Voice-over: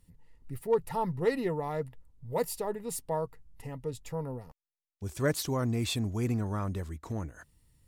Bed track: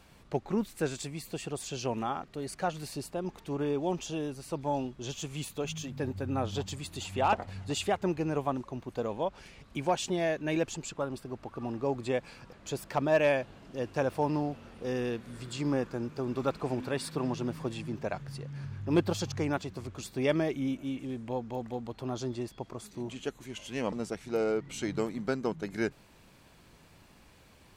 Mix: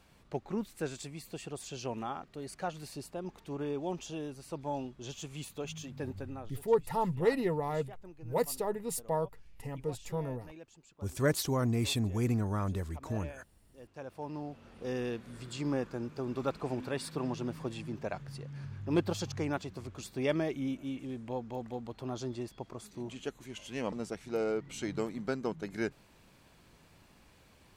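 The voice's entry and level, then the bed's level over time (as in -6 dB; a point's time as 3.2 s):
6.00 s, 0.0 dB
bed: 6.19 s -5 dB
6.6 s -21.5 dB
13.62 s -21.5 dB
14.83 s -3 dB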